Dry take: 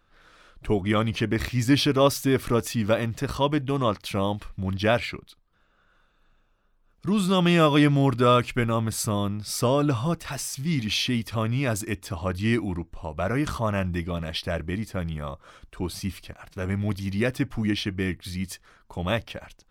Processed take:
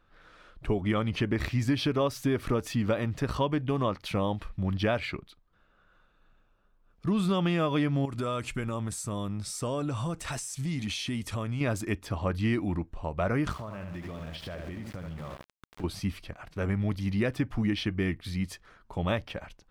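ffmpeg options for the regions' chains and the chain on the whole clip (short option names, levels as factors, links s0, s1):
-filter_complex "[0:a]asettb=1/sr,asplit=3[s0][s1][s2];[s0]atrim=end=8.054[s3];[s1]atrim=start=8.05:end=11.61,asetpts=PTS-STARTPTS,afade=t=in:d=0.004:c=qsin,afade=t=out:st=3.556:d=0.004:c=qsin,equalizer=f=8100:w=1.1:g=14,bandreject=f=4800:w=16,acompressor=threshold=0.0398:ratio=5:attack=3.2:release=140:knee=1:detection=peak[s4];[s2]atrim=start=11.606[s5];[s3][s4]acrossfade=d=0.004:c1=hsin:c2=qsin[s6];[s6][s5]acrossfade=d=0.004:c1=qsin:c2=hsin,asettb=1/sr,asplit=3[s7][s8][s9];[s7]atrim=end=13.524[s10];[s8]atrim=start=13.52:end=15.84,asetpts=PTS-STARTPTS,afade=t=in:d=0.004:c=qsin,afade=t=out:st=2.316:d=0.004:c=qsin,aecho=1:1:74|148|222|296:0.447|0.165|0.0612|0.0226,atrim=end_sample=102312,aeval=exprs='val(0)*gte(abs(val(0)),0.0168)':c=same,acompressor=threshold=0.02:ratio=16:attack=3.2:release=140:knee=1:detection=peak[s11];[s9]atrim=start=15.836[s12];[s10][s11]acrossfade=d=0.004:c1=hsin:c2=qsin[s13];[s13][s12]acrossfade=d=0.004:c1=qsin:c2=hsin,highshelf=f=4800:g=-10,acompressor=threshold=0.0708:ratio=6"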